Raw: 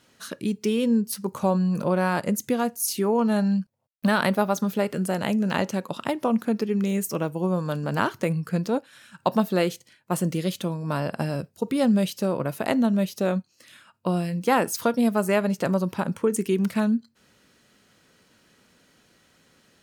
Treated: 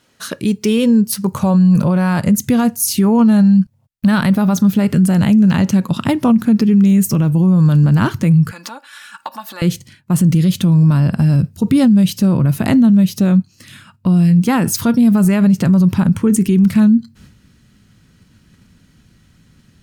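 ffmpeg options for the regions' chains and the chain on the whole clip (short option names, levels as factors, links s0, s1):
-filter_complex "[0:a]asettb=1/sr,asplit=3[s0][s1][s2];[s0]atrim=end=8.514[s3];[s1]atrim=start=8.51:end=9.62,asetpts=PTS-STARTPTS,afade=t=in:d=0.004:c=qsin,afade=t=out:st=1.106:d=0.004:c=qsin,aecho=1:1:3.5:0.62,atrim=end_sample=48951,acompressor=threshold=0.0355:ratio=16:attack=3.2:release=140:knee=1:detection=peak,highpass=f=970:t=q:w=1.7[s4];[s2]atrim=start=9.616[s5];[s3][s4]acrossfade=d=0.004:c1=hsin:c2=qsin[s6];[s6][s5]acrossfade=d=0.004:c1=qsin:c2=hsin,agate=range=0.398:threshold=0.00126:ratio=16:detection=peak,asubboost=boost=11.5:cutoff=150,alimiter=level_in=5.62:limit=0.891:release=50:level=0:latency=1,volume=0.596"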